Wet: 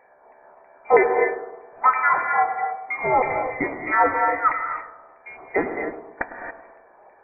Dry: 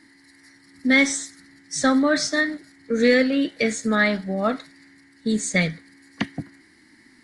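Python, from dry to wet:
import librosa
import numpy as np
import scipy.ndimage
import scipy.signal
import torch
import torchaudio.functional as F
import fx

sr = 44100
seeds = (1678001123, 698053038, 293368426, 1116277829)

p1 = fx.filter_lfo_highpass(x, sr, shape='saw_up', hz=3.1, low_hz=660.0, high_hz=1600.0, q=3.2)
p2 = p1 + fx.echo_wet_highpass(p1, sr, ms=105, feedback_pct=52, hz=1600.0, wet_db=-9, dry=0)
p3 = fx.rev_gated(p2, sr, seeds[0], gate_ms=300, shape='rising', drr_db=4.5)
y = fx.freq_invert(p3, sr, carrier_hz=2600)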